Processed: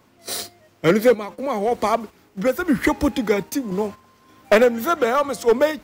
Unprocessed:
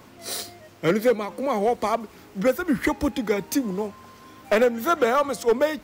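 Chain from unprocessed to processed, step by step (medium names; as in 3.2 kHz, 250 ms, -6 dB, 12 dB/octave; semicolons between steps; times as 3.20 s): gate -35 dBFS, range -10 dB; random-step tremolo; trim +6 dB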